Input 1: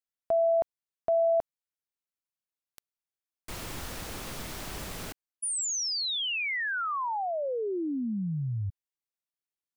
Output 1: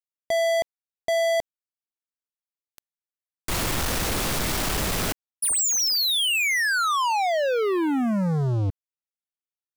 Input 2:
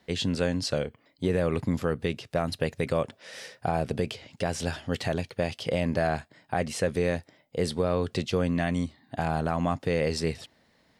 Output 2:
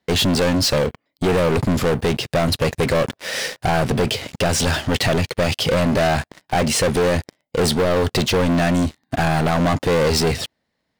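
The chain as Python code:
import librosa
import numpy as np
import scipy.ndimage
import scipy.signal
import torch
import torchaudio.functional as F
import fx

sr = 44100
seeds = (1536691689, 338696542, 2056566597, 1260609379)

y = fx.leveller(x, sr, passes=5)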